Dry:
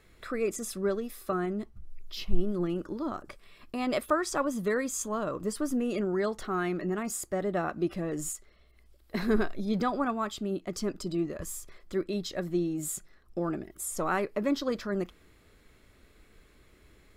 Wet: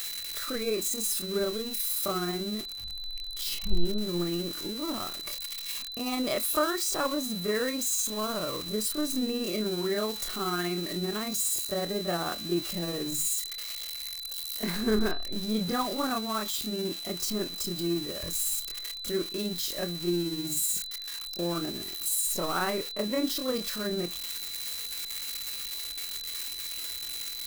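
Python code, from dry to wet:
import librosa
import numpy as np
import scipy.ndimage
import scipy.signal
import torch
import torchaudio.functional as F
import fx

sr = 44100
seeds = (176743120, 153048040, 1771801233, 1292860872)

y = x + 0.5 * 10.0 ** (-25.5 / 20.0) * np.diff(np.sign(x), prepend=np.sign(x[:1]))
y = y + 10.0 ** (-37.0 / 20.0) * np.sin(2.0 * np.pi * 4000.0 * np.arange(len(y)) / sr)
y = fx.stretch_grains(y, sr, factor=1.6, grain_ms=124.0)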